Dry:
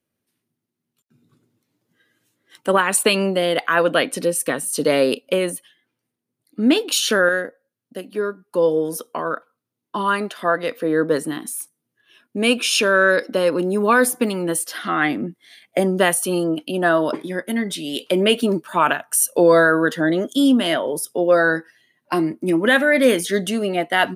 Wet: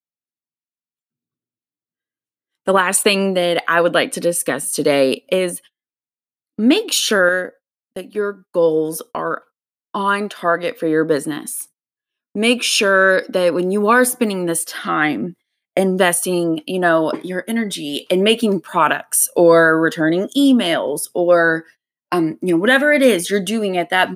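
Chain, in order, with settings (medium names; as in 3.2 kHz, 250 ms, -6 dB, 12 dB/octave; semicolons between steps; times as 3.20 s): gate -40 dBFS, range -31 dB; trim +2.5 dB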